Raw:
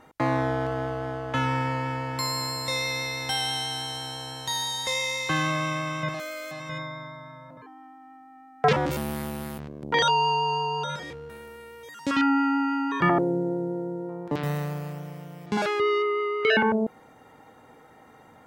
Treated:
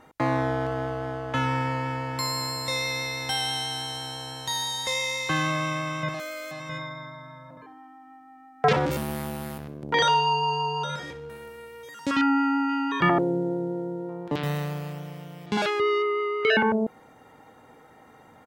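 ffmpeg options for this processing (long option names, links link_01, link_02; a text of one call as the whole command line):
ffmpeg -i in.wav -filter_complex "[0:a]asplit=3[link_01][link_02][link_03];[link_01]afade=type=out:start_time=6.7:duration=0.02[link_04];[link_02]aecho=1:1:62|124|186|248:0.224|0.0963|0.0414|0.0178,afade=type=in:start_time=6.7:duration=0.02,afade=type=out:start_time=12.1:duration=0.02[link_05];[link_03]afade=type=in:start_time=12.1:duration=0.02[link_06];[link_04][link_05][link_06]amix=inputs=3:normalize=0,asettb=1/sr,asplit=3[link_07][link_08][link_09];[link_07]atrim=end=12.694[link_10];[link_08]atrim=start=12.69:end=15.7,asetpts=PTS-STARTPTS,afade=type=in:duration=0.004:curve=qsin,afade=type=out:start_time=3.006:duration=0.004:curve=qsin,equalizer=frequency=3300:width=1.5:gain=6[link_11];[link_09]atrim=start=15.696[link_12];[link_10][link_11]acrossfade=duration=0.004:curve1=hsin:curve2=qsin[link_13];[link_13][link_12]acrossfade=duration=0.004:curve1=qsin:curve2=hsin" out.wav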